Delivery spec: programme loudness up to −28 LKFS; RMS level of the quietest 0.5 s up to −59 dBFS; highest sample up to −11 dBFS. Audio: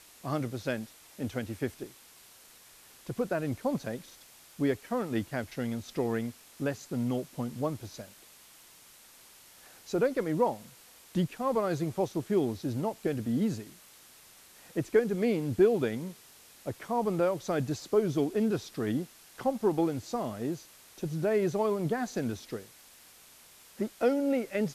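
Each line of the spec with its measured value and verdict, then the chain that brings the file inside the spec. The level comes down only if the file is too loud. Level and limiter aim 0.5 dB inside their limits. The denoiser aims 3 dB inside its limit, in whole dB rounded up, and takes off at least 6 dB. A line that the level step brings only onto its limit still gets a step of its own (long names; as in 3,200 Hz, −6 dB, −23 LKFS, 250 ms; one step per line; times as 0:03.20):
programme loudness −31.5 LKFS: in spec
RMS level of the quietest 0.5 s −56 dBFS: out of spec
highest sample −12.5 dBFS: in spec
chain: broadband denoise 6 dB, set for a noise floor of −56 dBFS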